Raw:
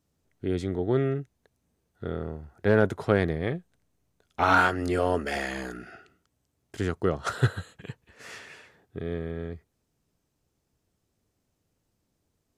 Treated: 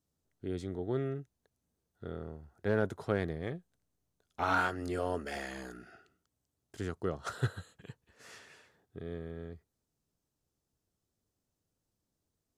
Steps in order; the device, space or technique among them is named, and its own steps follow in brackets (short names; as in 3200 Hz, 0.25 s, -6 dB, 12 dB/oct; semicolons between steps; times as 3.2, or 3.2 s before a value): exciter from parts (in parallel at -7 dB: HPF 2100 Hz 24 dB/oct + soft clip -39.5 dBFS, distortion -6 dB); on the sum: gain -9 dB